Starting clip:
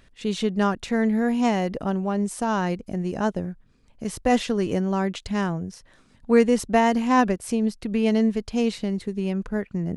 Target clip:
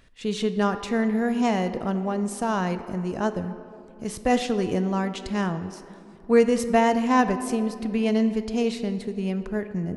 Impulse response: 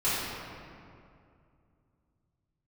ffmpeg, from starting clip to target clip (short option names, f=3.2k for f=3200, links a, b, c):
-filter_complex "[0:a]asplit=2[a][b];[b]highpass=f=260:w=0.5412,highpass=f=260:w=1.3066[c];[1:a]atrim=start_sample=2205,lowshelf=f=250:g=8.5[d];[c][d]afir=irnorm=-1:irlink=0,volume=-21.5dB[e];[a][e]amix=inputs=2:normalize=0,volume=-1.5dB"